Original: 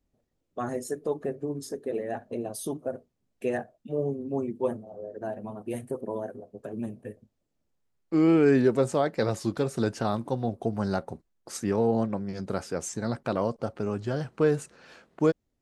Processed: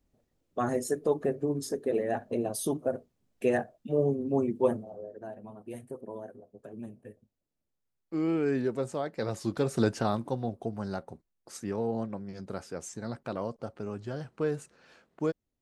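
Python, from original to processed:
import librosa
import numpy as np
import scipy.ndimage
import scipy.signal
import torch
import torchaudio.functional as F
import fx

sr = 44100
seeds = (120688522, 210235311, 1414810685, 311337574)

y = fx.gain(x, sr, db=fx.line((4.79, 2.5), (5.26, -8.0), (9.11, -8.0), (9.8, 1.5), (10.83, -7.0)))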